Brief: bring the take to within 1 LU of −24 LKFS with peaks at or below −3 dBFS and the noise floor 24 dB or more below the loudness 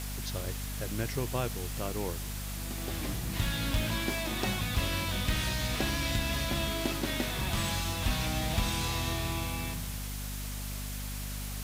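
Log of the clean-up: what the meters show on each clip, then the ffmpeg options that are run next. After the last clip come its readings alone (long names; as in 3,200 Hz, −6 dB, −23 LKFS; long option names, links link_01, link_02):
mains hum 50 Hz; hum harmonics up to 250 Hz; level of the hum −36 dBFS; background noise floor −37 dBFS; target noise floor −57 dBFS; integrated loudness −32.5 LKFS; sample peak −16.0 dBFS; target loudness −24.0 LKFS
→ -af "bandreject=frequency=50:width_type=h:width=6,bandreject=frequency=100:width_type=h:width=6,bandreject=frequency=150:width_type=h:width=6,bandreject=frequency=200:width_type=h:width=6,bandreject=frequency=250:width_type=h:width=6"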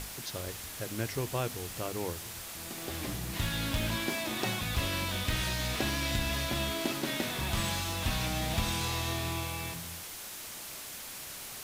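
mains hum none found; background noise floor −43 dBFS; target noise floor −58 dBFS
→ -af "afftdn=noise_reduction=15:noise_floor=-43"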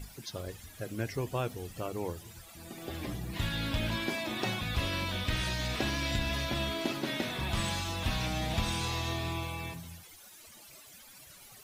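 background noise floor −54 dBFS; target noise floor −58 dBFS
→ -af "afftdn=noise_reduction=6:noise_floor=-54"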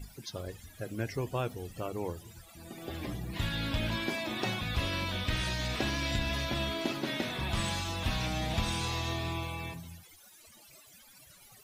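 background noise floor −57 dBFS; target noise floor −58 dBFS
→ -af "afftdn=noise_reduction=6:noise_floor=-57"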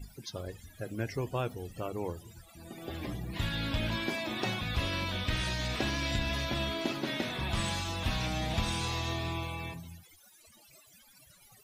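background noise floor −60 dBFS; integrated loudness −34.0 LKFS; sample peak −18.5 dBFS; target loudness −24.0 LKFS
→ -af "volume=10dB"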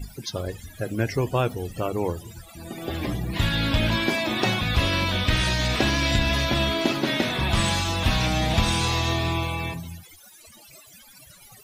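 integrated loudness −24.0 LKFS; sample peak −8.5 dBFS; background noise floor −50 dBFS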